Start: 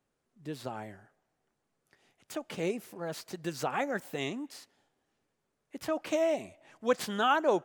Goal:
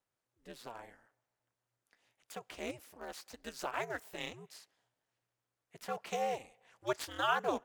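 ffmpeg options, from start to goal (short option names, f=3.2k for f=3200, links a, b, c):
-filter_complex "[0:a]equalizer=f=140:t=o:w=2.5:g=-14,asplit=2[a][b];[b]aeval=exprs='val(0)*gte(abs(val(0)),0.0224)':c=same,volume=-12dB[c];[a][c]amix=inputs=2:normalize=0,aeval=exprs='val(0)*sin(2*PI*120*n/s)':c=same,volume=-2.5dB"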